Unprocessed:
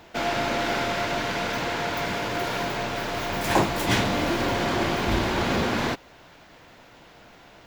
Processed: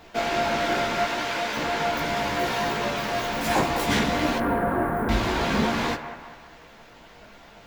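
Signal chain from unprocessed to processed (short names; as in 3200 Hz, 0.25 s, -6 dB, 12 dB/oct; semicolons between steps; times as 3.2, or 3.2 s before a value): 1.04–1.57 low shelf 230 Hz -10 dB; 2.15–3.2 doubler 14 ms -4 dB; 4.38–5.09 Chebyshev band-stop 1600–9900 Hz, order 3; in parallel at -5 dB: soft clip -24 dBFS, distortion -11 dB; on the sum: chorus voices 6, 0.46 Hz, delay 16 ms, depth 3.1 ms; band-limited delay 0.198 s, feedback 45%, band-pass 1100 Hz, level -9.5 dB; on a send at -12 dB: reverb RT60 0.80 s, pre-delay 4 ms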